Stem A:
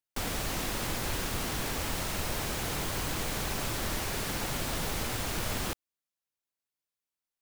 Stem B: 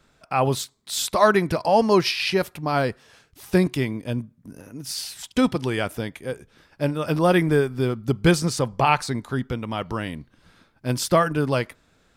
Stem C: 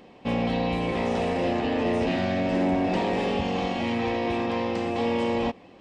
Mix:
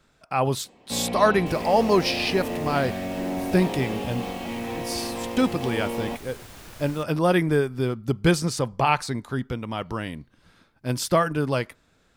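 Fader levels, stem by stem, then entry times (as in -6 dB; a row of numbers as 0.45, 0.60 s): -11.0, -2.0, -5.0 dB; 1.30, 0.00, 0.65 s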